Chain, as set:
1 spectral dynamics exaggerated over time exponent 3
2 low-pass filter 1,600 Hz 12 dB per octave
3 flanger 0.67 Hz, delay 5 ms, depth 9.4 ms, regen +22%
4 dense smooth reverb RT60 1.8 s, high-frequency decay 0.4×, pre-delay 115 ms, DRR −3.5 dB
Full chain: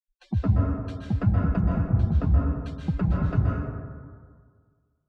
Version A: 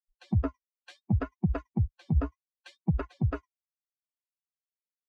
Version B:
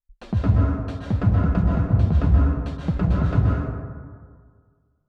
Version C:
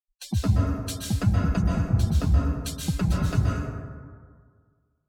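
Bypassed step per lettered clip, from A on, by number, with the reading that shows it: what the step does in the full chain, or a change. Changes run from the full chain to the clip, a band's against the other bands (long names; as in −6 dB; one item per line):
4, change in integrated loudness −6.0 LU
1, change in integrated loudness +4.0 LU
2, 2 kHz band +3.5 dB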